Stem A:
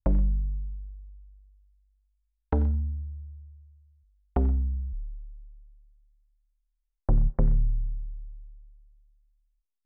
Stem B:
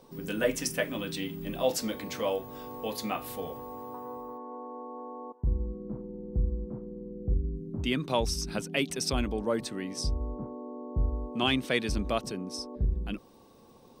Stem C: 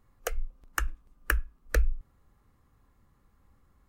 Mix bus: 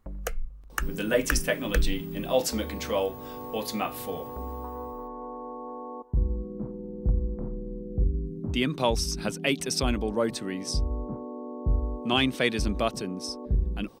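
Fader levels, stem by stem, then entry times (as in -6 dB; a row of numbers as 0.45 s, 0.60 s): -15.5 dB, +3.0 dB, 0.0 dB; 0.00 s, 0.70 s, 0.00 s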